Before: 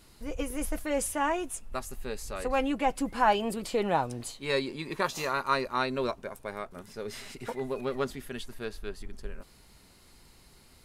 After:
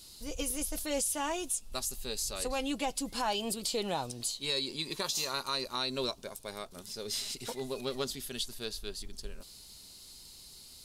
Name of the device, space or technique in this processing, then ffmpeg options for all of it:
over-bright horn tweeter: -af "highshelf=f=2.8k:t=q:w=1.5:g=12.5,alimiter=limit=-18dB:level=0:latency=1:release=149,volume=-4dB"

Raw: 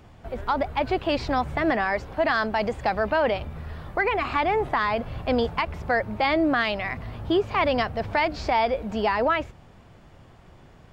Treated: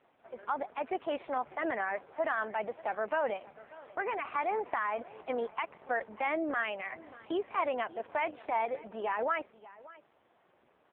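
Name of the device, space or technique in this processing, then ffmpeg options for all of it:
satellite phone: -af "highpass=370,lowpass=3k,aecho=1:1:587:0.106,volume=-7.5dB" -ar 8000 -c:a libopencore_amrnb -b:a 4750

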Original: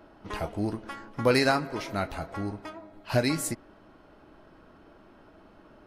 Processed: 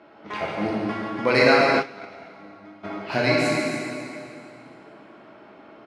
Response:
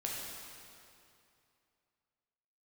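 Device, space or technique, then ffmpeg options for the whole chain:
station announcement: -filter_complex "[0:a]highpass=360,lowpass=4.5k,equalizer=f=2.2k:t=o:w=0.25:g=7,aecho=1:1:145.8|277:0.355|0.316[a];[1:a]atrim=start_sample=2205[b];[a][b]afir=irnorm=-1:irlink=0,bass=f=250:g=13,treble=f=4k:g=1,asplit=3[c][d][e];[c]afade=t=out:st=1.79:d=0.02[f];[d]agate=range=-18dB:threshold=-22dB:ratio=16:detection=peak,afade=t=in:st=1.79:d=0.02,afade=t=out:st=2.83:d=0.02[g];[e]afade=t=in:st=2.83:d=0.02[h];[f][g][h]amix=inputs=3:normalize=0,lowshelf=f=230:g=-3.5,volume=5dB"

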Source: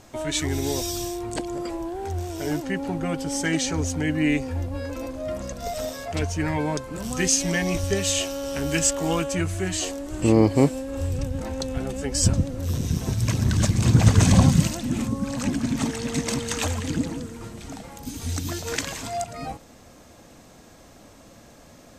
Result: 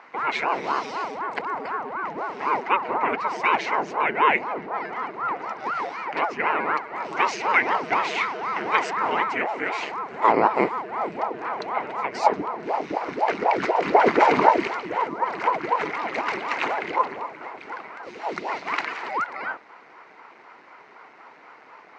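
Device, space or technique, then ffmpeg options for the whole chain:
voice changer toy: -filter_complex "[0:a]asettb=1/sr,asplit=3[a][b][c];[a]atrim=end=2.554[d];[b]atrim=start=2.55:end=3.37,asetpts=PTS-STARTPTS,afade=t=in:d=0.004:c=qsin,afade=t=out:st=0.816:d=0.004:c=qsin,aecho=1:1:5.6:0.77,atrim=end_sample=36162[e];[c]atrim=start=3.366[f];[d][e]acrossfade=d=0.004:c1=hsin:c2=qsin[g];[g][f]acrossfade=d=0.004:c1=qsin:c2=hsin,aeval=exprs='val(0)*sin(2*PI*420*n/s+420*0.85/4*sin(2*PI*4*n/s))':c=same,highpass=430,equalizer=f=570:t=q:w=4:g=-6,equalizer=f=990:t=q:w=4:g=5,equalizer=f=1.4k:t=q:w=4:g=5,equalizer=f=2.1k:t=q:w=4:g=10,equalizer=f=3.4k:t=q:w=4:g=-9,lowpass=f=3.6k:w=0.5412,lowpass=f=3.6k:w=1.3066,volume=4.5dB"

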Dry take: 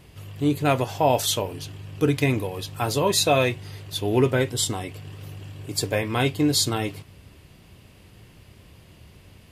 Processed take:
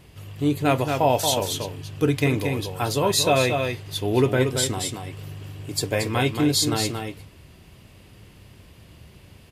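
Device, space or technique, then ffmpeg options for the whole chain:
ducked delay: -filter_complex "[0:a]asplit=3[a][b][c];[b]adelay=228,volume=-5dB[d];[c]apad=whole_len=429739[e];[d][e]sidechaincompress=threshold=-22dB:ratio=8:attack=25:release=128[f];[a][f]amix=inputs=2:normalize=0"

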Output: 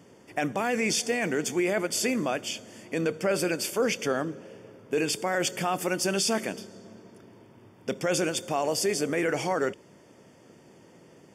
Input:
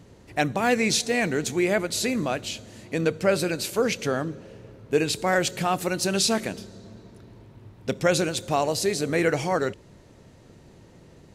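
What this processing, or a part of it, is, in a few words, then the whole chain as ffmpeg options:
PA system with an anti-feedback notch: -af "highpass=200,asuperstop=centerf=4000:order=20:qfactor=5.6,alimiter=limit=-17dB:level=0:latency=1:release=11"

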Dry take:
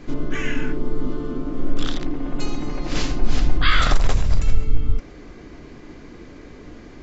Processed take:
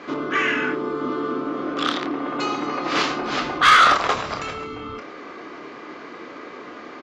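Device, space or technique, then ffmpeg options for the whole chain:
intercom: -filter_complex "[0:a]highpass=420,lowpass=4k,equalizer=f=1.2k:t=o:w=0.37:g=8.5,asoftclip=type=tanh:threshold=-16.5dB,asplit=2[a][b];[b]adelay=28,volume=-8dB[c];[a][c]amix=inputs=2:normalize=0,volume=8dB"

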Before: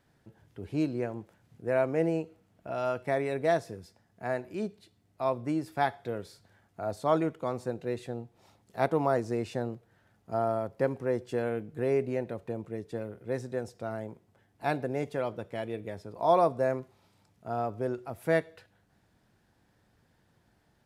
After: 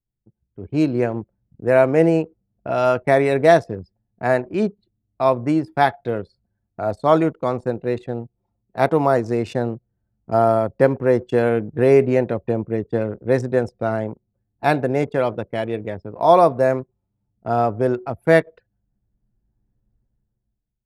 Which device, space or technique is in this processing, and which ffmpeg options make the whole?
voice memo with heavy noise removal: -af "anlmdn=0.0398,dynaudnorm=f=170:g=9:m=15.5dB"

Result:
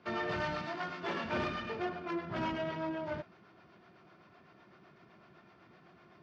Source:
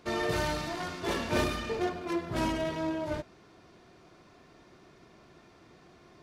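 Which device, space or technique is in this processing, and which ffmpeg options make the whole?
guitar amplifier with harmonic tremolo: -filter_complex "[0:a]asettb=1/sr,asplit=3[a][b][c];[a]atrim=end=0.614[d];[b]atrim=start=0.61:end=1.24,asetpts=PTS-STARTPTS,afade=t=in:d=0.004:c=qsin,afade=t=out:st=0.626:d=0.004:c=qsin,highpass=150[e];[c]atrim=start=1.236[f];[d][e]acrossfade=d=0.004:c1=hsin:c2=qsin[g];[g][f]acrossfade=d=0.004:c1=qsin:c2=hsin,acrossover=split=400[h][i];[h]aeval=exprs='val(0)*(1-0.5/2+0.5/2*cos(2*PI*7.9*n/s))':c=same[j];[i]aeval=exprs='val(0)*(1-0.5/2-0.5/2*cos(2*PI*7.9*n/s))':c=same[k];[j][k]amix=inputs=2:normalize=0,asoftclip=type=tanh:threshold=-26dB,highpass=110,equalizer=f=190:t=q:w=4:g=3,equalizer=f=280:t=q:w=4:g=-5,equalizer=f=460:t=q:w=4:g=-5,equalizer=f=1.4k:t=q:w=4:g=4,equalizer=f=3.9k:t=q:w=4:g=-6,lowpass=f=4.4k:w=0.5412,lowpass=f=4.4k:w=1.3066"

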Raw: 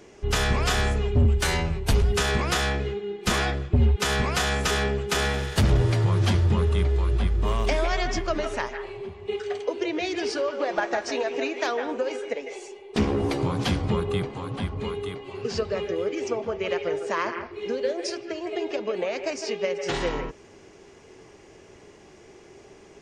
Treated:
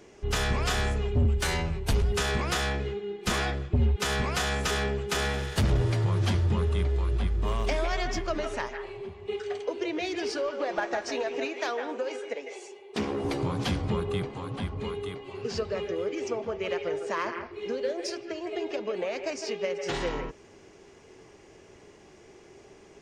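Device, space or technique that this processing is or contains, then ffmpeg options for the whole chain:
parallel distortion: -filter_complex "[0:a]asplit=2[a][b];[b]asoftclip=type=hard:threshold=-26dB,volume=-11.5dB[c];[a][c]amix=inputs=2:normalize=0,asettb=1/sr,asplit=3[d][e][f];[d]atrim=end=11.454[g];[e]atrim=start=11.45:end=13.25,asetpts=PTS-STARTPTS,afade=t=in:d=0.004:c=qsin,afade=t=out:st=1.796:d=0.004:c=qsin,highpass=f=260:p=1[h];[f]atrim=start=13.246[i];[g][h]acrossfade=d=0.004:c1=hsin:c2=qsin[j];[j][i]acrossfade=d=0.004:c1=qsin:c2=hsin,volume=-5dB"

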